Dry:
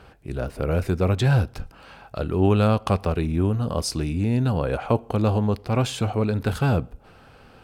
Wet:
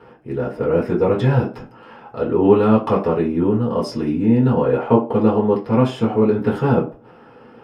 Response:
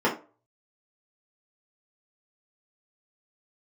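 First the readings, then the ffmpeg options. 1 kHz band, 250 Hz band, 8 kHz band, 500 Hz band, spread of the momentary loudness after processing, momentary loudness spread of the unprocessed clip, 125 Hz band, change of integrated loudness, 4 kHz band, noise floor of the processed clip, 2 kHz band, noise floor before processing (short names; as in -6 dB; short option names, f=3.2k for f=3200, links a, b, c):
+5.5 dB, +7.5 dB, under -10 dB, +8.5 dB, 9 LU, 11 LU, 0.0 dB, +5.5 dB, -4.0 dB, -46 dBFS, +0.5 dB, -50 dBFS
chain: -filter_complex "[1:a]atrim=start_sample=2205[a];[0:a][a]afir=irnorm=-1:irlink=0,volume=-11dB"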